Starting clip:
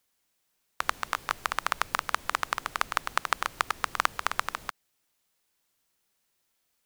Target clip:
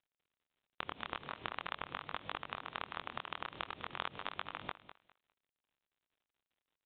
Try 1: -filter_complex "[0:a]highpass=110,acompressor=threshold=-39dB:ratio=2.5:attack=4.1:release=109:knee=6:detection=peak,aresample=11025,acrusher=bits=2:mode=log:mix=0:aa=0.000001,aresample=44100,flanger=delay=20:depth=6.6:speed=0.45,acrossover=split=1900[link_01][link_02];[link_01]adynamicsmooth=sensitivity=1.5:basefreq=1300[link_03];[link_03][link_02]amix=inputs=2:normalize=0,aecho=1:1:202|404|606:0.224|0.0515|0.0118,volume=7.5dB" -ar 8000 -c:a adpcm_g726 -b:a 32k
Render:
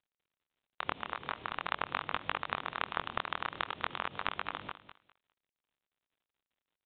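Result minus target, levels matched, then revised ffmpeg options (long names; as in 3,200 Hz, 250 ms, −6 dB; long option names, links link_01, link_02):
downward compressor: peak gain reduction −5.5 dB
-filter_complex "[0:a]highpass=110,acompressor=threshold=-48dB:ratio=2.5:attack=4.1:release=109:knee=6:detection=peak,aresample=11025,acrusher=bits=2:mode=log:mix=0:aa=0.000001,aresample=44100,flanger=delay=20:depth=6.6:speed=0.45,acrossover=split=1900[link_01][link_02];[link_01]adynamicsmooth=sensitivity=1.5:basefreq=1300[link_03];[link_03][link_02]amix=inputs=2:normalize=0,aecho=1:1:202|404|606:0.224|0.0515|0.0118,volume=7.5dB" -ar 8000 -c:a adpcm_g726 -b:a 32k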